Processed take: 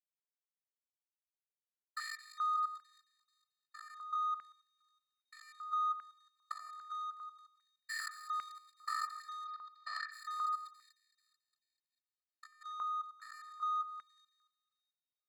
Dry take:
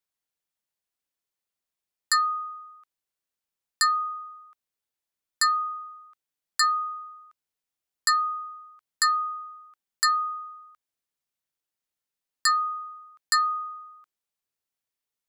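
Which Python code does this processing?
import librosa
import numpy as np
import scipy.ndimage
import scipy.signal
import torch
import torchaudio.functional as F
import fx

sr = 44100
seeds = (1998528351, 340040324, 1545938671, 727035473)

y = fx.spec_steps(x, sr, hold_ms=200)
y = fx.over_compress(y, sr, threshold_db=-36.0, ratio=-1.0)
y = fx.power_curve(y, sr, exponent=2.0)
y = fx.echo_split(y, sr, split_hz=2400.0, low_ms=91, high_ms=219, feedback_pct=52, wet_db=-12.5)
y = fx.level_steps(y, sr, step_db=12)
y = fx.lowpass(y, sr, hz=4900.0, slope=24, at=(9.44, 10.11), fade=0.02)
y = 10.0 ** (-37.0 / 20.0) * np.tanh(y / 10.0 ** (-37.0 / 20.0))
y = fx.filter_held_highpass(y, sr, hz=2.5, low_hz=1000.0, high_hz=2100.0)
y = y * librosa.db_to_amplitude(3.5)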